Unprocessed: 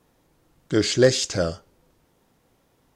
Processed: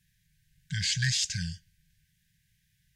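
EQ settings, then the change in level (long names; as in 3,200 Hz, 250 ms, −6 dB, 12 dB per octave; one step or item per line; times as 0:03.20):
linear-phase brick-wall band-stop 190–1,500 Hz
−3.0 dB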